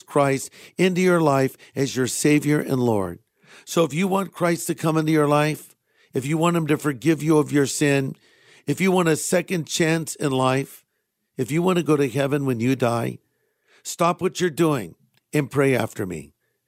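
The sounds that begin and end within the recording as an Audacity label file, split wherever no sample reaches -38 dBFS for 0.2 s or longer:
3.510000	5.710000	sound
6.150000	8.150000	sound
8.680000	10.780000	sound
11.380000	13.160000	sound
13.850000	14.920000	sound
15.330000	16.250000	sound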